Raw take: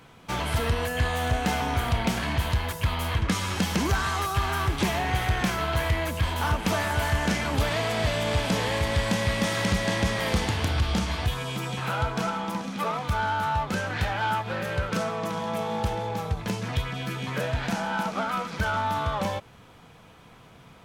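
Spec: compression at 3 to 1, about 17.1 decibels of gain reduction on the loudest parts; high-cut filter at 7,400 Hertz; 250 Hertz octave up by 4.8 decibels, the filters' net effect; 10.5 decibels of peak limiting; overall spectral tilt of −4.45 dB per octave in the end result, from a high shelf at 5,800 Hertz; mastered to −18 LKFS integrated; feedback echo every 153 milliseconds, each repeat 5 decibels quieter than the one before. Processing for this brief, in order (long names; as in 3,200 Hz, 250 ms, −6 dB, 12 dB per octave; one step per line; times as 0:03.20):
low-pass filter 7,400 Hz
parametric band 250 Hz +6.5 dB
high-shelf EQ 5,800 Hz +3 dB
downward compressor 3 to 1, threshold −42 dBFS
brickwall limiter −37 dBFS
repeating echo 153 ms, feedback 56%, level −5 dB
level +25.5 dB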